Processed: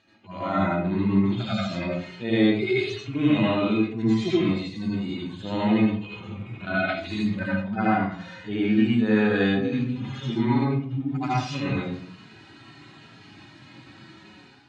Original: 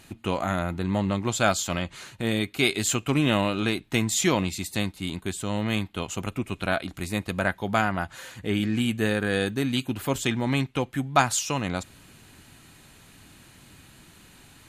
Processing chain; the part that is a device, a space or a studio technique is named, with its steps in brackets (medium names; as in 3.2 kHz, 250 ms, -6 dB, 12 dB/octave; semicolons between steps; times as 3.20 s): harmonic-percussive separation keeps harmonic; far laptop microphone (reverberation RT60 0.50 s, pre-delay 70 ms, DRR -7 dB; high-pass 150 Hz 12 dB/octave; level rider gain up to 9 dB); low-pass 5.1 kHz 24 dB/octave; 6.88–7.63 s: peaking EQ 2.2 kHz -> 13 kHz +10 dB 2.2 oct; trim -8 dB